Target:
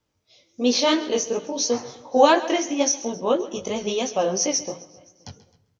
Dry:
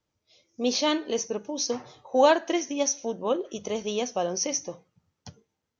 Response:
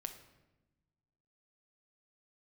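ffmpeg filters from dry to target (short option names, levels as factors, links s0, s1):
-filter_complex "[0:a]asplit=2[s0][s1];[s1]aecho=0:1:262|524|786:0.0668|0.0321|0.0154[s2];[s0][s2]amix=inputs=2:normalize=0,flanger=delay=16.5:depth=5.2:speed=2.9,asplit=2[s3][s4];[1:a]atrim=start_sample=2205,adelay=134[s5];[s4][s5]afir=irnorm=-1:irlink=0,volume=0.211[s6];[s3][s6]amix=inputs=2:normalize=0,volume=2.51"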